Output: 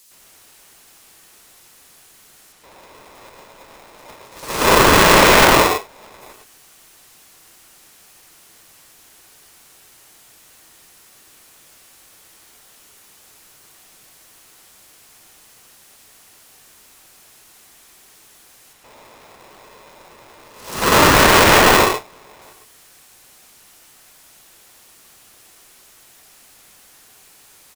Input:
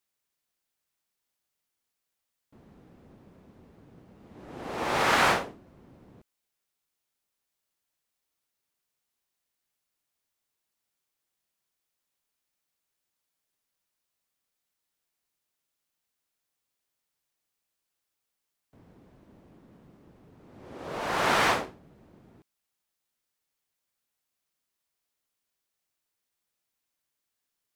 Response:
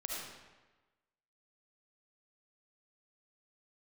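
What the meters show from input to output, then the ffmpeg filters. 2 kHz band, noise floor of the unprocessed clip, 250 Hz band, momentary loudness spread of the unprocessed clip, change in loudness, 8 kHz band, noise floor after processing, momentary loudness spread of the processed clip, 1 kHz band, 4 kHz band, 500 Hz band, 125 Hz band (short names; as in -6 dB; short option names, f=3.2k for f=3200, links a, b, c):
+15.0 dB, -84 dBFS, +18.0 dB, 21 LU, +14.5 dB, +21.0 dB, -49 dBFS, 15 LU, +14.5 dB, +17.5 dB, +17.5 dB, +19.0 dB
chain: -filter_complex "[0:a]aeval=exprs='val(0)+0.5*0.02*sgn(val(0))':c=same,agate=range=-35dB:threshold=-36dB:ratio=16:detection=peak,acrossover=split=340[a][b];[b]acompressor=threshold=-47dB:ratio=2[c];[a][c]amix=inputs=2:normalize=0,acrossover=split=3600[d][e];[d]adelay=110[f];[f][e]amix=inputs=2:normalize=0[g];[1:a]atrim=start_sample=2205,atrim=end_sample=3087,asetrate=25578,aresample=44100[h];[g][h]afir=irnorm=-1:irlink=0,alimiter=level_in=29.5dB:limit=-1dB:release=50:level=0:latency=1,aeval=exprs='val(0)*sgn(sin(2*PI*750*n/s))':c=same,volume=-1dB"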